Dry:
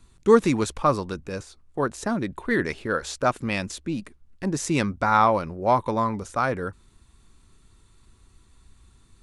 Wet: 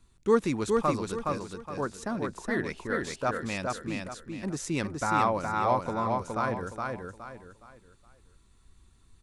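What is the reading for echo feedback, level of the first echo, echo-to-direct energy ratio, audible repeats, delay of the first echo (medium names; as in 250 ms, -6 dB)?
33%, -3.5 dB, -3.0 dB, 4, 417 ms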